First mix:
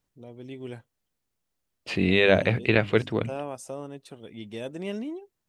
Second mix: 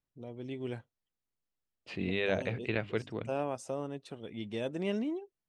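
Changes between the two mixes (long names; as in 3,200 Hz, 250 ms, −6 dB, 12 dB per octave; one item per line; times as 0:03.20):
second voice −11.5 dB
master: add high-frequency loss of the air 54 metres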